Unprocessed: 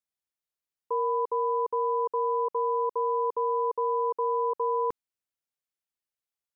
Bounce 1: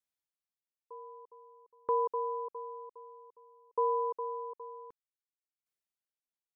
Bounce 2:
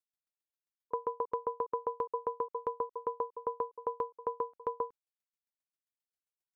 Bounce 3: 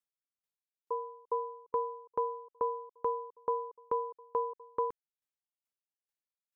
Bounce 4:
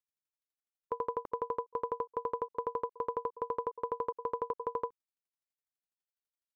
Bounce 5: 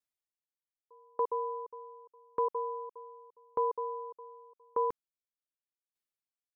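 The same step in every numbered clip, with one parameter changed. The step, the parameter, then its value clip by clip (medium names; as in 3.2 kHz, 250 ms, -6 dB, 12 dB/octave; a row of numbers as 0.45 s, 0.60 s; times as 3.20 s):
sawtooth tremolo in dB, rate: 0.53 Hz, 7.5 Hz, 2.3 Hz, 12 Hz, 0.84 Hz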